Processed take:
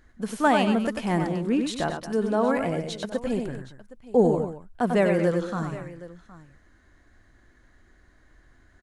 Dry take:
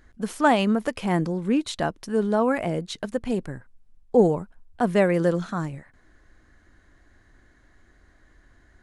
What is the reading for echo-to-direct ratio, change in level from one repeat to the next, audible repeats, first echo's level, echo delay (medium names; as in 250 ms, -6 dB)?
-5.0 dB, no regular repeats, 3, -6.0 dB, 95 ms